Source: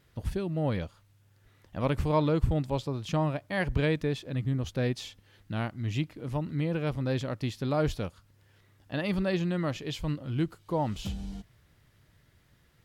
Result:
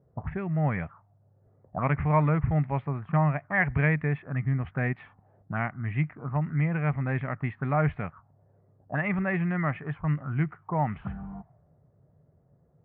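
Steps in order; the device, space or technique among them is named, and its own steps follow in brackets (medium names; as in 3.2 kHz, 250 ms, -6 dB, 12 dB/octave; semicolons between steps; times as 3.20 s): envelope filter bass rig (touch-sensitive low-pass 500–2100 Hz up, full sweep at -28 dBFS; cabinet simulation 73–2200 Hz, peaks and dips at 150 Hz +7 dB, 320 Hz -7 dB, 510 Hz -8 dB, 730 Hz +6 dB, 1.2 kHz +4 dB)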